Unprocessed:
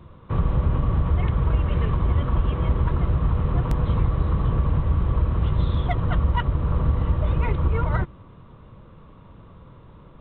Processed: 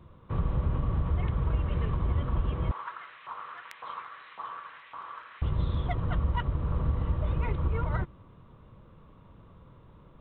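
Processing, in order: 2.71–5.42 s: LFO high-pass saw up 1.8 Hz 940–2300 Hz; trim -7 dB

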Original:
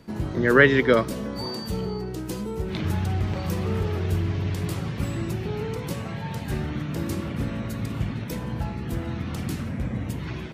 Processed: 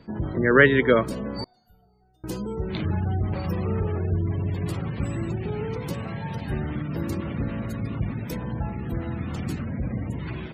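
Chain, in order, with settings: spectral gate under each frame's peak -30 dB strong; 1.44–2.24 s: feedback comb 720 Hz, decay 0.34 s, mix 100%

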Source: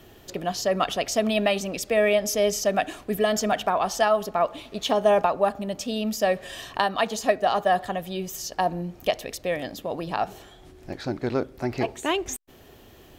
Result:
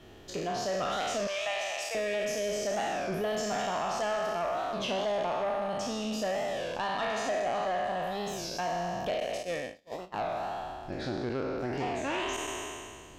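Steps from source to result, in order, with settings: spectral sustain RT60 1.88 s; 1.28–1.95 s: high-pass 660 Hz 24 dB/octave; 9.20–10.24 s: gate -23 dBFS, range -37 dB; compression 2:1, threshold -26 dBFS, peak gain reduction 7.5 dB; saturation -21 dBFS, distortion -15 dB; distance through air 53 m; warped record 33 1/3 rpm, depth 160 cents; trim -4 dB

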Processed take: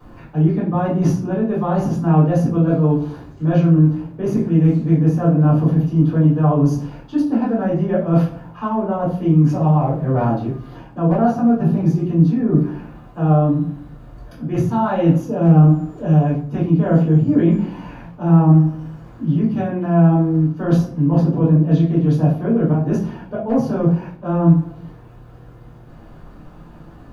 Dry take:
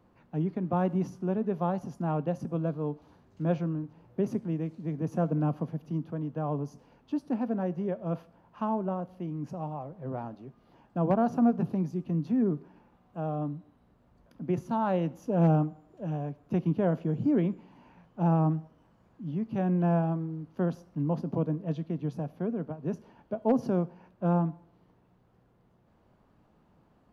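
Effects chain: reverse; compression 6:1, threshold -35 dBFS, peak gain reduction 15 dB; reverse; simulated room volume 31 m³, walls mixed, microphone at 2.7 m; trim +7 dB

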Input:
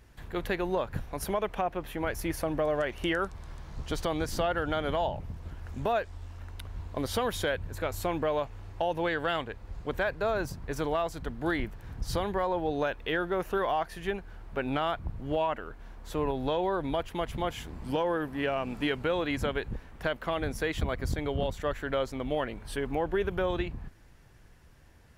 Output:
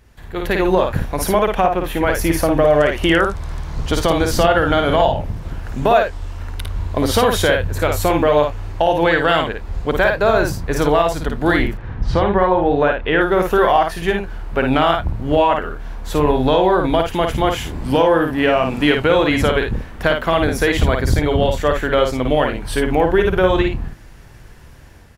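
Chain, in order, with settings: early reflections 54 ms -4.5 dB, 79 ms -17.5 dB; level rider gain up to 9 dB; 11.77–13.21 s: low-pass 2.6 kHz 12 dB/octave; trim +4.5 dB

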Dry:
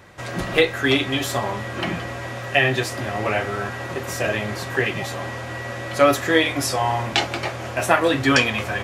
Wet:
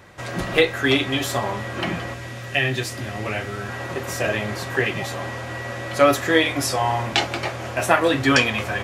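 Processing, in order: 2.14–3.69 s: peaking EQ 810 Hz -7.5 dB 2.3 oct

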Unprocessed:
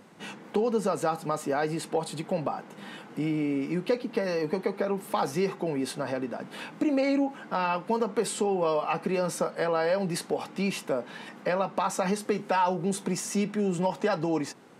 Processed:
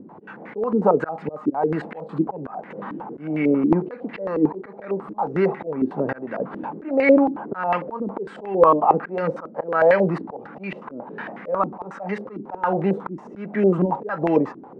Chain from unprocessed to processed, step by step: slow attack 293 ms; step-sequenced low-pass 11 Hz 310–2000 Hz; trim +7 dB

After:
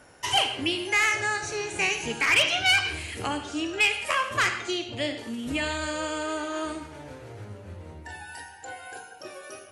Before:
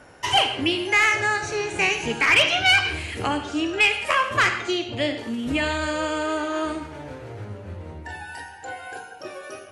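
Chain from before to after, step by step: treble shelf 5.4 kHz +9.5 dB; trim -5.5 dB

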